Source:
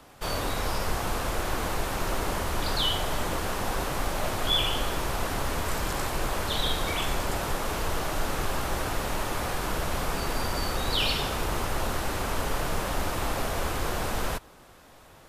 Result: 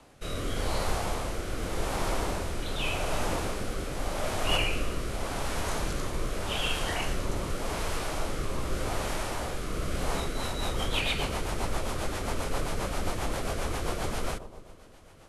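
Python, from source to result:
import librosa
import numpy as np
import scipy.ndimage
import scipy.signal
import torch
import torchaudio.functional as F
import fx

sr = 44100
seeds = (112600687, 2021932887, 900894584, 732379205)

y = fx.echo_bbd(x, sr, ms=122, stages=1024, feedback_pct=68, wet_db=-13.5)
y = fx.rotary_switch(y, sr, hz=0.85, then_hz=7.5, switch_at_s=9.95)
y = fx.formant_shift(y, sr, semitones=-3)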